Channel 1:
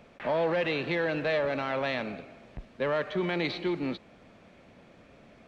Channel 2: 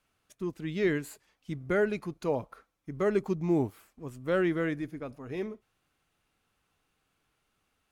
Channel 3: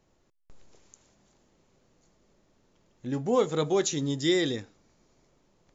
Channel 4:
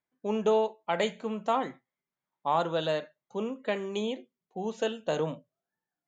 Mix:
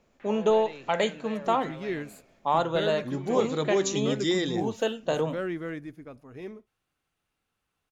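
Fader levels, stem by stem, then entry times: -14.0, -5.0, -1.5, +2.5 dB; 0.00, 1.05, 0.00, 0.00 s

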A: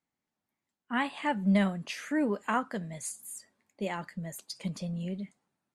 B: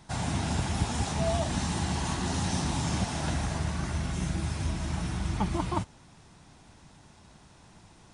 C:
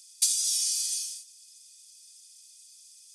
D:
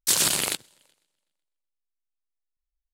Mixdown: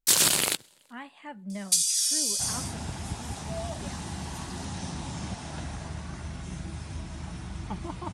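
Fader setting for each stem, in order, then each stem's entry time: -12.0, -6.5, +1.5, +0.5 dB; 0.00, 2.30, 1.50, 0.00 s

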